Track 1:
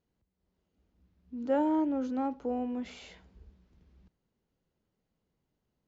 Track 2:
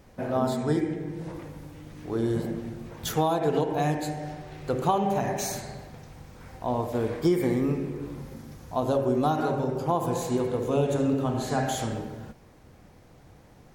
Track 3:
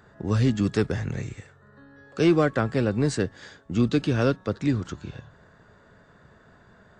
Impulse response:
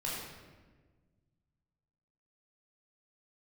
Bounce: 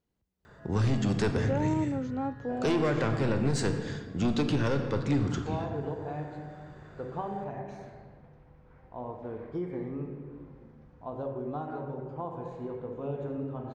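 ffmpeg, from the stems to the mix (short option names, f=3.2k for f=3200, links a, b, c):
-filter_complex "[0:a]volume=-1dB[a];[1:a]lowpass=1.8k,adelay=2300,volume=-12.5dB,asplit=2[b][c];[c]volume=-12dB[d];[2:a]asoftclip=type=tanh:threshold=-20dB,adelay=450,volume=-2dB,asplit=2[e][f];[f]volume=-7.5dB[g];[3:a]atrim=start_sample=2205[h];[d][g]amix=inputs=2:normalize=0[i];[i][h]afir=irnorm=-1:irlink=0[j];[a][b][e][j]amix=inputs=4:normalize=0,alimiter=limit=-19dB:level=0:latency=1:release=66"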